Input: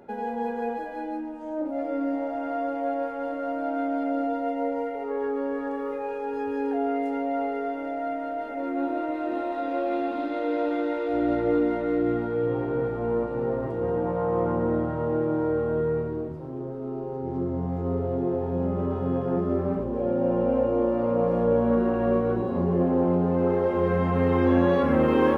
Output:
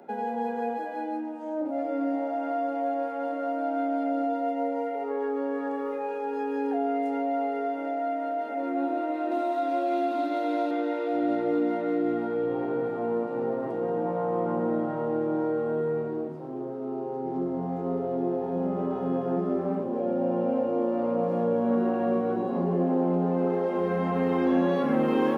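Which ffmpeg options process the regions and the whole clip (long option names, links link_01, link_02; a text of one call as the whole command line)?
ffmpeg -i in.wav -filter_complex "[0:a]asettb=1/sr,asplit=3[link_01][link_02][link_03];[link_01]atrim=end=9.314[link_04];[link_02]atrim=start=9.31:end=10.71,asetpts=PTS-STARTPTS,afade=type=in:duration=0.004:curve=qsin,afade=type=out:start_time=1.396:duration=0.004:curve=qsin,bass=frequency=250:gain=-7,treble=frequency=4000:gain=7,aecho=1:1:3:0.6,atrim=end_sample=61740[link_05];[link_03]atrim=start=10.706[link_06];[link_04][link_05]acrossfade=duration=0.004:curve1=hsin:curve2=qsin[link_07];[link_07][link_06]acrossfade=duration=0.004:curve1=qsin:curve2=hsin,highpass=frequency=170:width=0.5412,highpass=frequency=170:width=1.3066,equalizer=frequency=740:width_type=o:width=0.2:gain=7.5,acrossover=split=290|3000[link_08][link_09][link_10];[link_09]acompressor=threshold=-29dB:ratio=2[link_11];[link_08][link_11][link_10]amix=inputs=3:normalize=0" out.wav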